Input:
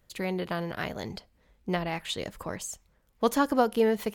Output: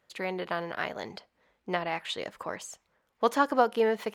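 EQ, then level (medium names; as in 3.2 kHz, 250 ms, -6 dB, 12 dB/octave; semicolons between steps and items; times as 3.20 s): high-pass 1.2 kHz 6 dB/octave; treble shelf 2.1 kHz -11 dB; treble shelf 9.6 kHz -12 dB; +8.5 dB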